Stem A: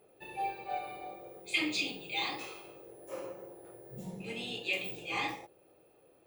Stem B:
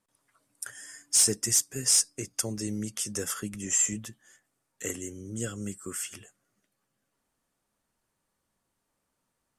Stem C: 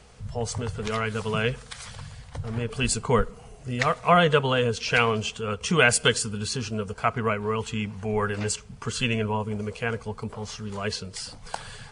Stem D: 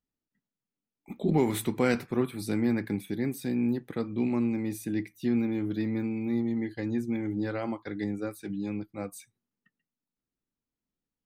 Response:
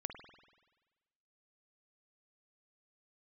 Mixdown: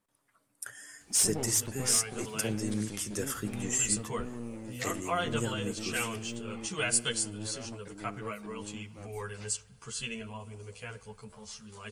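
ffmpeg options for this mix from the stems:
-filter_complex "[0:a]lowpass=f=2300:p=1,acompressor=threshold=0.00891:ratio=6,adelay=1400,volume=0.316[s0];[1:a]equalizer=f=6200:t=o:w=1.4:g=-4.5,volume=0.708,asplit=2[s1][s2];[s2]volume=0.376[s3];[2:a]aemphasis=mode=production:type=75fm,asplit=2[s4][s5];[s5]adelay=10.7,afreqshift=0.66[s6];[s4][s6]amix=inputs=2:normalize=1,adelay=1000,volume=0.211,asplit=2[s7][s8];[s8]volume=0.398[s9];[3:a]aeval=exprs='clip(val(0),-1,0.0158)':c=same,volume=0.299[s10];[4:a]atrim=start_sample=2205[s11];[s3][s9]amix=inputs=2:normalize=0[s12];[s12][s11]afir=irnorm=-1:irlink=0[s13];[s0][s1][s7][s10][s13]amix=inputs=5:normalize=0"

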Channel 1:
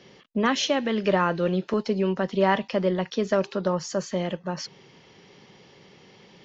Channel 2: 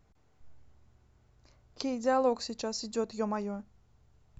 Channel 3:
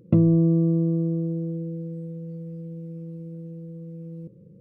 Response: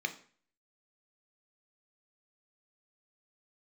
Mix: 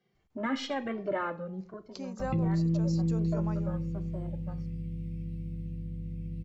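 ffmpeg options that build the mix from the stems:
-filter_complex "[0:a]afwtdn=0.0251,asplit=2[s0][s1];[s1]adelay=2.1,afreqshift=-1.3[s2];[s0][s2]amix=inputs=2:normalize=1,volume=0.631,afade=t=out:st=1.19:d=0.29:silence=0.354813,asplit=2[s3][s4];[s4]volume=0.398[s5];[1:a]adelay=150,volume=0.398[s6];[2:a]aeval=exprs='val(0)+0.0158*(sin(2*PI*50*n/s)+sin(2*PI*2*50*n/s)/2+sin(2*PI*3*50*n/s)/3+sin(2*PI*4*50*n/s)/4+sin(2*PI*5*50*n/s)/5)':c=same,firequalizer=gain_entry='entry(130,0);entry(720,-23);entry(2100,14);entry(6400,3)':delay=0.05:min_phase=1,adelay=2200,volume=0.841[s7];[3:a]atrim=start_sample=2205[s8];[s5][s8]afir=irnorm=-1:irlink=0[s9];[s3][s6][s7][s9]amix=inputs=4:normalize=0,alimiter=limit=0.0794:level=0:latency=1:release=18"

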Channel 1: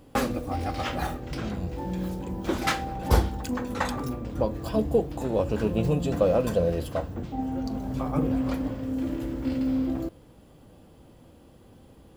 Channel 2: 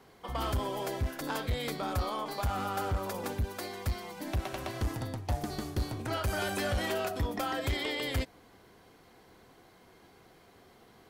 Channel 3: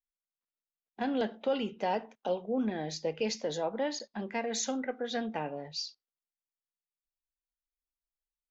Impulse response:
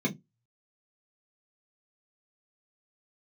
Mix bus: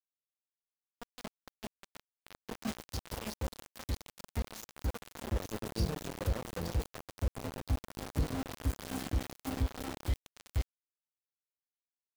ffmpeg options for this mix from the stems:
-filter_complex "[0:a]bandreject=f=1800:w=7.6,flanger=delay=4:depth=9.6:regen=39:speed=0.67:shape=triangular,volume=0.473,afade=t=in:st=1.6:d=0.68:silence=0.316228,afade=t=in:st=4.96:d=0.55:silence=0.473151,asplit=2[s0][s1];[s1]volume=0.376[s2];[1:a]asubboost=boost=3:cutoff=120,acrossover=split=490|3000[s3][s4][s5];[s4]acompressor=threshold=0.0141:ratio=2[s6];[s3][s6][s5]amix=inputs=3:normalize=0,aeval=exprs='sgn(val(0))*max(abs(val(0))-0.00841,0)':c=same,adelay=2400,volume=0.447,asplit=2[s7][s8];[s8]volume=0.0794[s9];[2:a]bandreject=f=50:t=h:w=6,bandreject=f=100:t=h:w=6,bandreject=f=150:t=h:w=6,bandreject=f=200:t=h:w=6,bandreject=f=250:t=h:w=6,bandreject=f=300:t=h:w=6,bandreject=f=350:t=h:w=6,bandreject=f=400:t=h:w=6,asoftclip=type=hard:threshold=0.0631,volume=0.398,asplit=3[s10][s11][s12];[s11]volume=0.0944[s13];[s12]volume=0.335[s14];[3:a]atrim=start_sample=2205[s15];[s9][s13]amix=inputs=2:normalize=0[s16];[s16][s15]afir=irnorm=-1:irlink=0[s17];[s2][s14]amix=inputs=2:normalize=0,aecho=0:1:878:1[s18];[s0][s7][s10][s17][s18]amix=inputs=5:normalize=0,acrossover=split=390|3000[s19][s20][s21];[s20]acompressor=threshold=0.00447:ratio=4[s22];[s19][s22][s21]amix=inputs=3:normalize=0,aeval=exprs='val(0)*gte(abs(val(0)),0.02)':c=same"

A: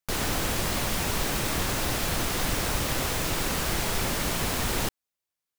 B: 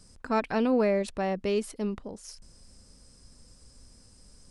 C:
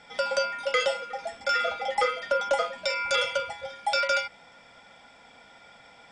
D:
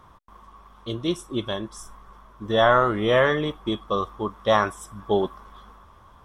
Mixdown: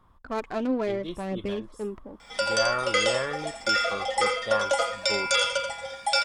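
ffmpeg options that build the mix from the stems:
-filter_complex "[1:a]agate=range=0.355:threshold=0.00794:ratio=16:detection=peak,aphaser=in_gain=1:out_gain=1:delay=3.6:decay=0.5:speed=0.72:type=triangular,adynamicsmooth=sensitivity=3.5:basefreq=1100,volume=0.708[s0];[2:a]aemphasis=mode=production:type=50fm,adelay=2200,volume=1,asplit=2[s1][s2];[s2]volume=0.447[s3];[3:a]bandreject=f=5900:w=6.1,volume=0.266[s4];[s3]aecho=0:1:85:1[s5];[s0][s1][s4][s5]amix=inputs=4:normalize=0"

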